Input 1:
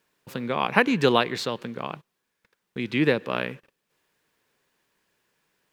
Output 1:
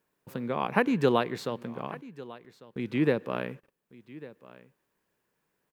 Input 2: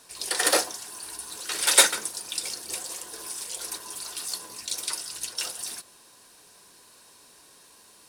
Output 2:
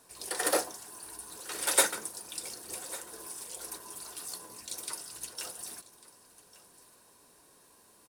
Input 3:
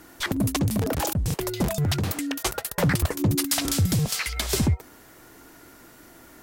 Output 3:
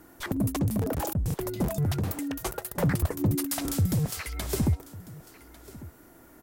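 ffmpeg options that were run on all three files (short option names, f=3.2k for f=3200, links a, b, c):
-af "equalizer=f=3.9k:w=0.45:g=-9,aecho=1:1:1148:0.112,volume=-2.5dB"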